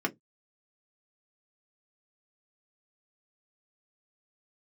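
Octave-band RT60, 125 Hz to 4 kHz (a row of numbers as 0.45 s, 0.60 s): 0.25 s, 0.20 s, 0.15 s, 0.10 s, 0.10 s, 0.10 s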